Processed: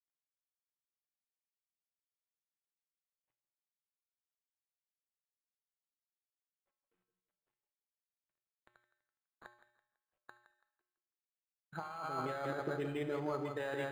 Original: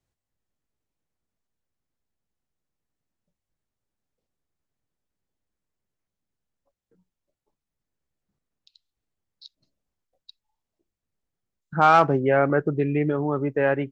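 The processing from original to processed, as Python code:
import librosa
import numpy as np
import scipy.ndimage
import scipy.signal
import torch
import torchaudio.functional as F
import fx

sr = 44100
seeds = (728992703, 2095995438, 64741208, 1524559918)

y = fx.law_mismatch(x, sr, coded='A')
y = fx.low_shelf(y, sr, hz=480.0, db=-11.0)
y = fx.echo_wet_lowpass(y, sr, ms=166, feedback_pct=32, hz=2800.0, wet_db=-7)
y = fx.over_compress(y, sr, threshold_db=-28.0, ratio=-1.0)
y = fx.high_shelf(y, sr, hz=4300.0, db=7.5)
y = fx.comb_fb(y, sr, f0_hz=120.0, decay_s=0.64, harmonics='odd', damping=0.0, mix_pct=80)
y = fx.rev_spring(y, sr, rt60_s=1.0, pass_ms=(43,), chirp_ms=35, drr_db=11.5)
y = np.interp(np.arange(len(y)), np.arange(len(y))[::8], y[::8])
y = y * librosa.db_to_amplitude(1.5)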